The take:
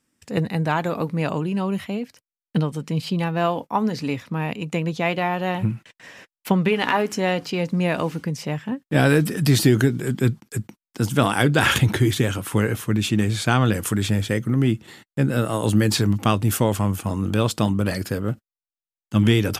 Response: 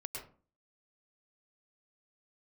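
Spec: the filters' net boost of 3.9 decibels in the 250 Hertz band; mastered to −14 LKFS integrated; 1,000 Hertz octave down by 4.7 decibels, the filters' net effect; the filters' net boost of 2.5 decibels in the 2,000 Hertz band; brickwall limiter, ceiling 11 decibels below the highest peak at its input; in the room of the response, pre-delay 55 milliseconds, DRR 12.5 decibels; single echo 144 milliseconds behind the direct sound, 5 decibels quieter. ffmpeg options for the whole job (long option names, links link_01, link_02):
-filter_complex "[0:a]equalizer=frequency=250:width_type=o:gain=5.5,equalizer=frequency=1000:width_type=o:gain=-8.5,equalizer=frequency=2000:width_type=o:gain=6,alimiter=limit=-12.5dB:level=0:latency=1,aecho=1:1:144:0.562,asplit=2[link_01][link_02];[1:a]atrim=start_sample=2205,adelay=55[link_03];[link_02][link_03]afir=irnorm=-1:irlink=0,volume=-11.5dB[link_04];[link_01][link_04]amix=inputs=2:normalize=0,volume=8dB"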